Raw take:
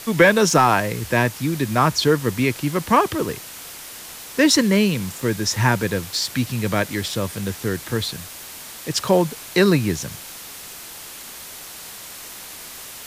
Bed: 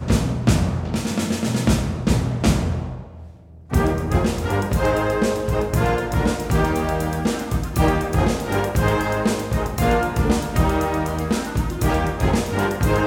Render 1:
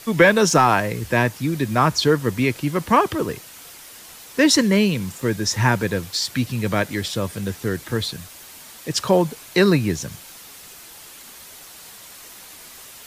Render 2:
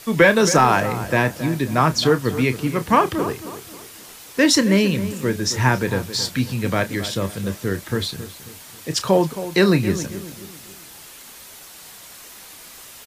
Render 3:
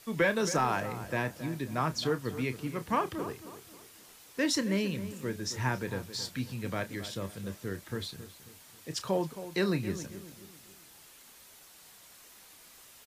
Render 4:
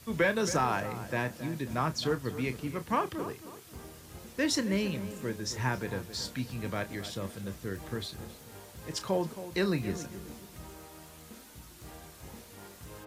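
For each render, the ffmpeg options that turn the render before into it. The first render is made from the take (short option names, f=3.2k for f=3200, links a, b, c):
-af "afftdn=nr=6:nf=-38"
-filter_complex "[0:a]asplit=2[a][b];[b]adelay=31,volume=-12dB[c];[a][c]amix=inputs=2:normalize=0,asplit=2[d][e];[e]adelay=270,lowpass=f=1.9k:p=1,volume=-12.5dB,asplit=2[f][g];[g]adelay=270,lowpass=f=1.9k:p=1,volume=0.4,asplit=2[h][i];[i]adelay=270,lowpass=f=1.9k:p=1,volume=0.4,asplit=2[j][k];[k]adelay=270,lowpass=f=1.9k:p=1,volume=0.4[l];[d][f][h][j][l]amix=inputs=5:normalize=0"
-af "volume=-13.5dB"
-filter_complex "[1:a]volume=-29.5dB[a];[0:a][a]amix=inputs=2:normalize=0"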